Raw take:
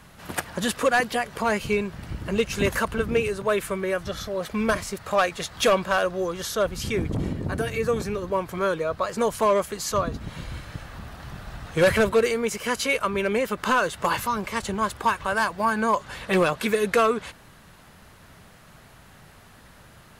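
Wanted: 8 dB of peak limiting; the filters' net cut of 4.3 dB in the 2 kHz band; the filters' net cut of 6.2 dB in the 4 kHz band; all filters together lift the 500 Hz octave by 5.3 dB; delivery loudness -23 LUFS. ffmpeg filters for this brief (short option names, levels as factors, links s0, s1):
-af "equalizer=f=500:t=o:g=6.5,equalizer=f=2000:t=o:g=-5,equalizer=f=4000:t=o:g=-6.5,volume=1.26,alimiter=limit=0.251:level=0:latency=1"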